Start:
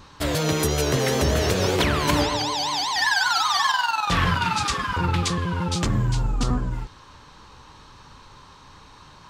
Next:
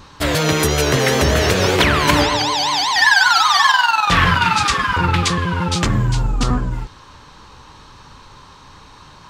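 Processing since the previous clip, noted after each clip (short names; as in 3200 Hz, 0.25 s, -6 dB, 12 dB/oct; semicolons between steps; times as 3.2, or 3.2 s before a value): dynamic EQ 1900 Hz, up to +5 dB, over -36 dBFS, Q 0.73; gain +5 dB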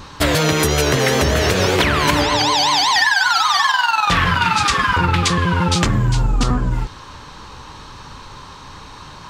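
compressor, threshold -18 dBFS, peak gain reduction 9.5 dB; gain +5.5 dB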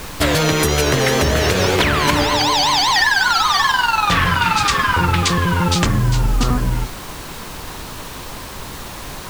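added noise pink -32 dBFS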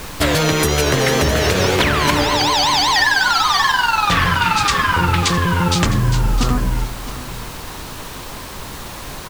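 echo 0.66 s -14.5 dB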